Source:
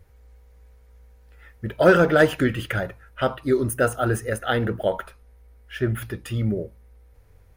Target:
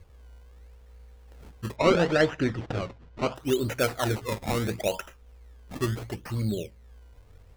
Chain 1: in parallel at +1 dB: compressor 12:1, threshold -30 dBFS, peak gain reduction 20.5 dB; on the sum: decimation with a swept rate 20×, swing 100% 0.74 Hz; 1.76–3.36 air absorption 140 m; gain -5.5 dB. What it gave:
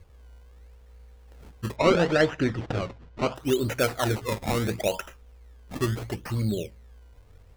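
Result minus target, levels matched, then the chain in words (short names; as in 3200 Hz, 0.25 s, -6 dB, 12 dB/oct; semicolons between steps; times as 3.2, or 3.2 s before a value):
compressor: peak gain reduction -9 dB
in parallel at +1 dB: compressor 12:1, threshold -40 dBFS, peak gain reduction 29.5 dB; on the sum: decimation with a swept rate 20×, swing 100% 0.74 Hz; 1.76–3.36 air absorption 140 m; gain -5.5 dB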